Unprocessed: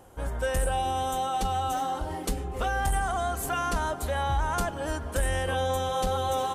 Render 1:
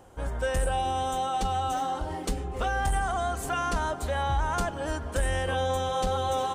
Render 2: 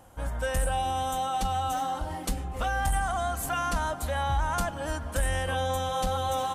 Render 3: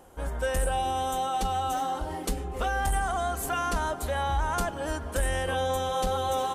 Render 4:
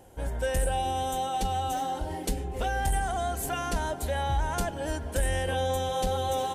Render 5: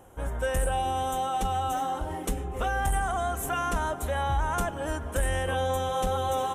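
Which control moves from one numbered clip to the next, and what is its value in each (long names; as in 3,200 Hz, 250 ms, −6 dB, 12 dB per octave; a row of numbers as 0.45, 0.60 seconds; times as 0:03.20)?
parametric band, centre frequency: 12,000, 400, 110, 1,200, 4,600 Hertz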